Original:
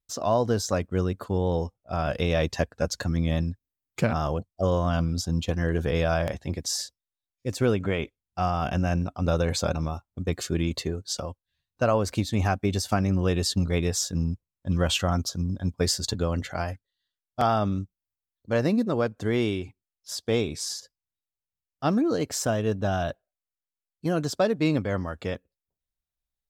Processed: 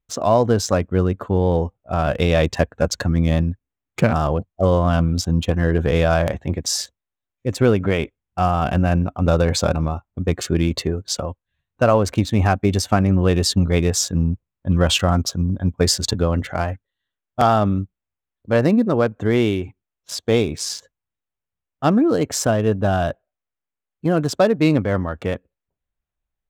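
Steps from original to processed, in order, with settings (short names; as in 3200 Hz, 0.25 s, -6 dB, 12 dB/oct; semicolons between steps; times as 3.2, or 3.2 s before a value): Wiener smoothing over 9 samples; gain +7.5 dB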